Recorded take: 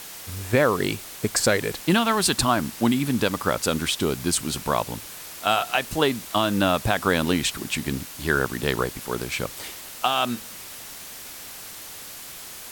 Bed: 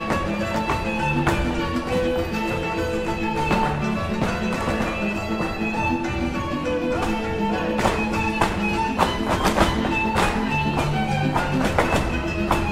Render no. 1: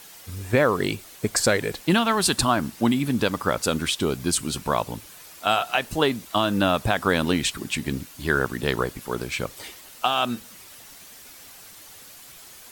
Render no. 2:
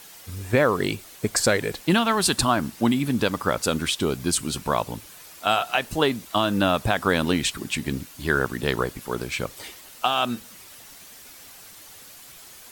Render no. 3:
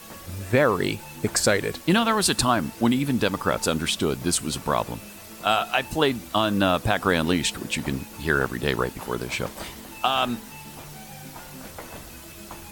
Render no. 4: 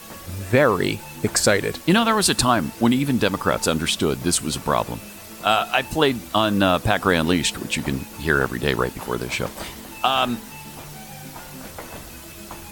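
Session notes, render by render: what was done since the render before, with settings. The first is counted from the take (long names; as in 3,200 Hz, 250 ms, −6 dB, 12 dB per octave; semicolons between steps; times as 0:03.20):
broadband denoise 8 dB, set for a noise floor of −40 dBFS
no processing that can be heard
mix in bed −20.5 dB
level +3 dB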